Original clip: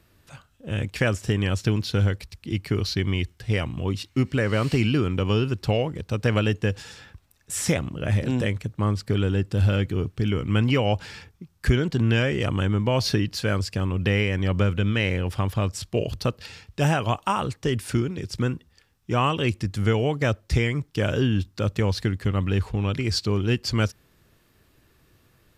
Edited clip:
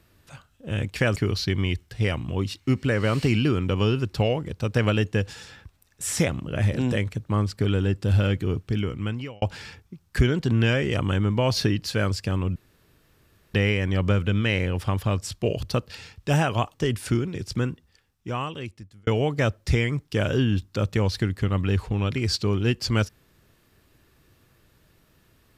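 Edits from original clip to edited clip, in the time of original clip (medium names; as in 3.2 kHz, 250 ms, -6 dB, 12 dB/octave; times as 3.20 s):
1.16–2.65 s: delete
10.13–10.91 s: fade out
14.05 s: insert room tone 0.98 s
17.25–17.57 s: delete
18.31–19.90 s: fade out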